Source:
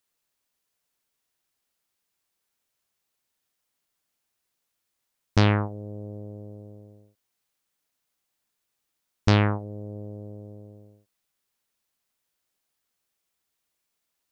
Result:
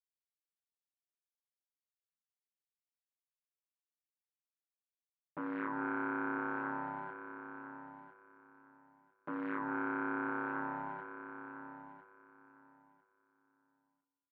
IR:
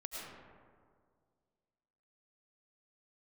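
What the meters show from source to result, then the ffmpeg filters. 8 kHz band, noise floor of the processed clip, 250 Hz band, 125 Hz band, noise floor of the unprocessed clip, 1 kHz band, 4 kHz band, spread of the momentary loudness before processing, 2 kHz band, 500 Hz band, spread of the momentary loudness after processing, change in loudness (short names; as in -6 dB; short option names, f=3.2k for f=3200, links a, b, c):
n/a, under -85 dBFS, -8.0 dB, -30.0 dB, -80 dBFS, -3.0 dB, under -30 dB, 22 LU, -3.0 dB, -10.5 dB, 16 LU, -14.0 dB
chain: -filter_complex "[0:a]equalizer=f=880:t=o:w=2.1:g=8.5,acompressor=threshold=-34dB:ratio=6,aresample=16000,asoftclip=type=tanh:threshold=-33dB,aresample=44100,acrusher=bits=9:mix=0:aa=0.000001,aeval=exprs='0.0224*sin(PI/2*2.51*val(0)/0.0224)':c=same,aeval=exprs='val(0)*sin(2*PI*380*n/s)':c=same,highpass=210,equalizer=f=210:t=q:w=4:g=-8,equalizer=f=310:t=q:w=4:g=4,equalizer=f=480:t=q:w=4:g=-10,equalizer=f=690:t=q:w=4:g=-8,equalizer=f=1k:t=q:w=4:g=8,equalizer=f=1.5k:t=q:w=4:g=9,lowpass=f=2k:w=0.5412,lowpass=f=2k:w=1.3066,aecho=1:1:1001|2002|3003:0.299|0.0567|0.0108,asplit=2[a][b];[1:a]atrim=start_sample=2205[c];[b][c]afir=irnorm=-1:irlink=0,volume=-12.5dB[d];[a][d]amix=inputs=2:normalize=0,volume=1.5dB"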